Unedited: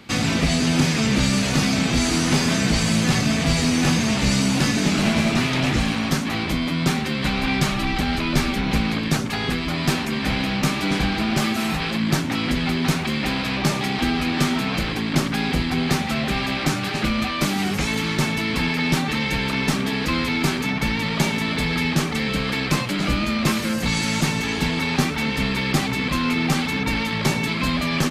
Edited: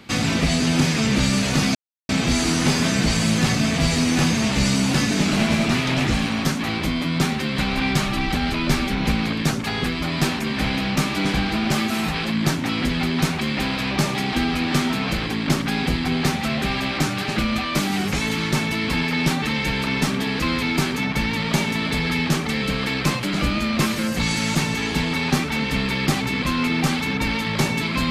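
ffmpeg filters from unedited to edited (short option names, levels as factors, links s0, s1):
-filter_complex "[0:a]asplit=2[s0][s1];[s0]atrim=end=1.75,asetpts=PTS-STARTPTS,afade=t=out:st=1.746:d=0.004:c=hsin,apad=pad_dur=0.34[s2];[s1]atrim=start=1.75,asetpts=PTS-STARTPTS,afade=t=in:d=0.004:c=hsin[s3];[s2][s3]concat=n=2:v=0:a=1"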